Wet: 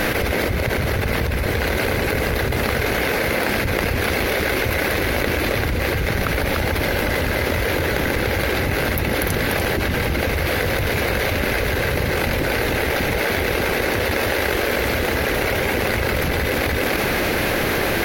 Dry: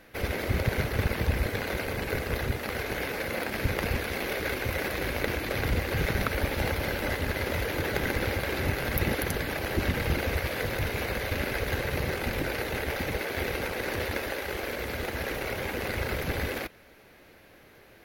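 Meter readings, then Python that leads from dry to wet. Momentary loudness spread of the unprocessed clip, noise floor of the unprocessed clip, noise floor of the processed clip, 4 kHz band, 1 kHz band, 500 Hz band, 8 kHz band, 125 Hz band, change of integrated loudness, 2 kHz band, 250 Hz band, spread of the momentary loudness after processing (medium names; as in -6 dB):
4 LU, -55 dBFS, -22 dBFS, +11.0 dB, +11.0 dB, +10.5 dB, +11.0 dB, +8.0 dB, +10.0 dB, +10.5 dB, +10.0 dB, 1 LU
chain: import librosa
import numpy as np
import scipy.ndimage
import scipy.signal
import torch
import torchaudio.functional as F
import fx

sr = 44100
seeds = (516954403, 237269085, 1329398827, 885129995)

p1 = x + fx.echo_single(x, sr, ms=295, db=-8.5, dry=0)
y = fx.env_flatten(p1, sr, amount_pct=100)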